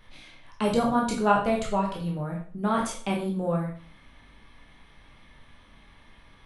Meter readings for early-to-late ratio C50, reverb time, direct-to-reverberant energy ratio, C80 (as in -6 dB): 5.5 dB, 0.45 s, -2.0 dB, 10.0 dB